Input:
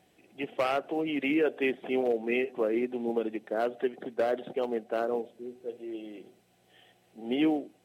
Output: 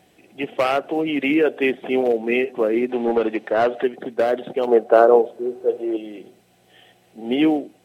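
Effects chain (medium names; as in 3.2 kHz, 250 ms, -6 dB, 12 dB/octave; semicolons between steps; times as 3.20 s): 2.89–3.83 s: overdrive pedal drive 15 dB, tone 2.4 kHz, clips at -17.5 dBFS; 4.67–5.97 s: high-order bell 720 Hz +9.5 dB 2.3 oct; trim +8.5 dB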